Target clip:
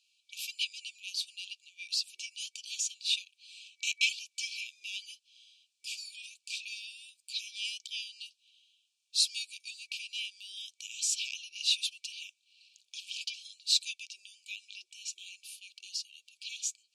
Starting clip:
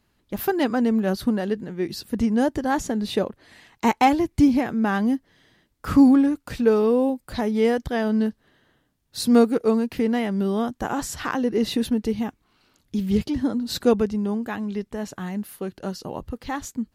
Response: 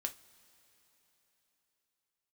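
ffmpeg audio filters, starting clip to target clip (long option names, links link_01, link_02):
-af "afftfilt=real='re*(1-between(b*sr/4096,200,2300))':imag='im*(1-between(b*sr/4096,200,2300))':win_size=4096:overlap=0.75,lowpass=frequency=8500:width=0.5412,lowpass=frequency=8500:width=1.3066,afftfilt=real='re*gte(b*sr/1024,370*pow(2100/370,0.5+0.5*sin(2*PI*3*pts/sr)))':imag='im*gte(b*sr/1024,370*pow(2100/370,0.5+0.5*sin(2*PI*3*pts/sr)))':win_size=1024:overlap=0.75,volume=4.5dB"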